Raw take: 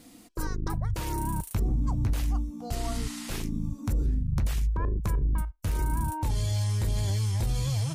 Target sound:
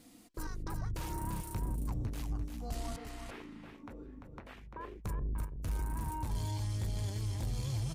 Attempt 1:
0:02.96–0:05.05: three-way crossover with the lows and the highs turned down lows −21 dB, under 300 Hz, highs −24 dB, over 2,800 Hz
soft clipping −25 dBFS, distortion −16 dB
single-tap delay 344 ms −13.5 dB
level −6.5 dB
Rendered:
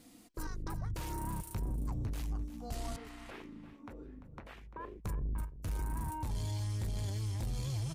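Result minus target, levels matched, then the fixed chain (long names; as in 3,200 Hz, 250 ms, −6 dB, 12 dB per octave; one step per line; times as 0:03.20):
echo-to-direct −7 dB
0:02.96–0:05.05: three-way crossover with the lows and the highs turned down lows −21 dB, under 300 Hz, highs −24 dB, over 2,800 Hz
soft clipping −25 dBFS, distortion −16 dB
single-tap delay 344 ms −6.5 dB
level −6.5 dB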